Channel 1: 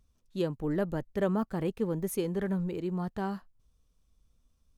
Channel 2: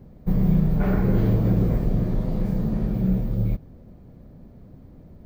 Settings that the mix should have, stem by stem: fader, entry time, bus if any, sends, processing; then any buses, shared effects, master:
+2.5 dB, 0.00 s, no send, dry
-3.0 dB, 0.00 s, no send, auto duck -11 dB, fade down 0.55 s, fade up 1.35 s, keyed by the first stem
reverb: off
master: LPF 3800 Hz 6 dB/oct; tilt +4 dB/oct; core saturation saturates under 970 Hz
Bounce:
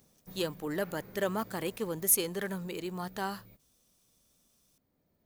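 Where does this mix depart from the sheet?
stem 2 -3.0 dB -> -11.0 dB; master: missing LPF 3800 Hz 6 dB/oct

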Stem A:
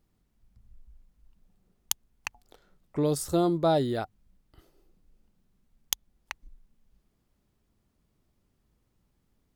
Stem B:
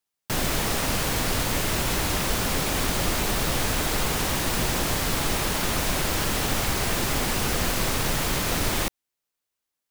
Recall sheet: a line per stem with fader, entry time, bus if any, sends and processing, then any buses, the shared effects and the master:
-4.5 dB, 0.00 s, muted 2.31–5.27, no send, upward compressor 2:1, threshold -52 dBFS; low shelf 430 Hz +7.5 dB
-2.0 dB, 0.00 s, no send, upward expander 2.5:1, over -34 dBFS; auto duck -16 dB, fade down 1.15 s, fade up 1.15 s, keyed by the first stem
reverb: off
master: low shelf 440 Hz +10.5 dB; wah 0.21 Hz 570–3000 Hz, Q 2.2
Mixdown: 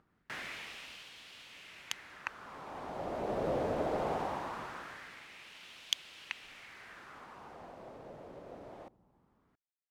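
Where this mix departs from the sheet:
stem A -4.5 dB -> +2.0 dB; stem B: missing upward expander 2.5:1, over -34 dBFS

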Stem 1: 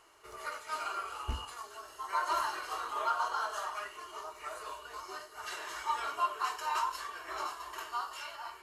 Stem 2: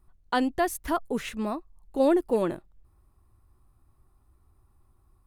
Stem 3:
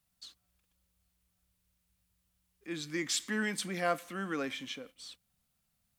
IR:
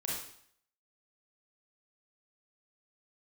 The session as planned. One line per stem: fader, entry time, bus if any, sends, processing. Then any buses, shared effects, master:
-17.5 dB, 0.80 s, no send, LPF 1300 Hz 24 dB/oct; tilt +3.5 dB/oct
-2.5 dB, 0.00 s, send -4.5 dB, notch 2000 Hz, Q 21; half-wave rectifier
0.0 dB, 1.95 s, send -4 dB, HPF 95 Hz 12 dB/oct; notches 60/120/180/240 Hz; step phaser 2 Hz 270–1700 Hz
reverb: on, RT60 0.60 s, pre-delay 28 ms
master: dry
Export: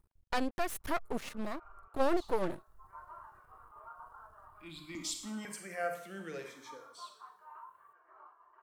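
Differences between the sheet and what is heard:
stem 2: send off; stem 3 0.0 dB -> -8.0 dB

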